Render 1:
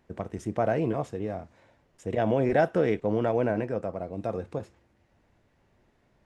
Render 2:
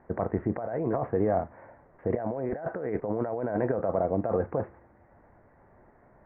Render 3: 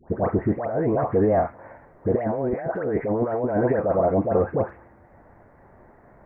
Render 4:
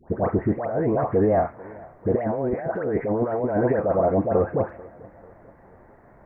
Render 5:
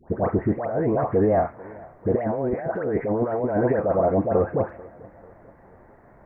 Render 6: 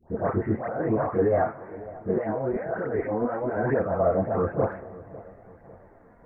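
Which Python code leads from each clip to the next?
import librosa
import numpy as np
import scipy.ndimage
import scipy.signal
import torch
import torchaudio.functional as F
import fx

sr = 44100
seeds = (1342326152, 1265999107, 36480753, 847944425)

y1 = scipy.signal.sosfilt(scipy.signal.butter(8, 2000.0, 'lowpass', fs=sr, output='sos'), x)
y1 = fx.peak_eq(y1, sr, hz=780.0, db=7.0, octaves=1.8)
y1 = fx.over_compress(y1, sr, threshold_db=-29.0, ratio=-1.0)
y2 = fx.dispersion(y1, sr, late='highs', ms=110.0, hz=1200.0)
y2 = y2 * 10.0 ** (6.5 / 20.0)
y3 = fx.echo_feedback(y2, sr, ms=442, feedback_pct=48, wet_db=-23)
y4 = y3
y5 = fx.chorus_voices(y4, sr, voices=2, hz=0.53, base_ms=26, depth_ms=4.5, mix_pct=65)
y5 = fx.echo_feedback(y5, sr, ms=549, feedback_pct=40, wet_db=-18.0)
y5 = fx.dynamic_eq(y5, sr, hz=1400.0, q=1.7, threshold_db=-45.0, ratio=4.0, max_db=6)
y5 = y5 * 10.0 ** (-1.0 / 20.0)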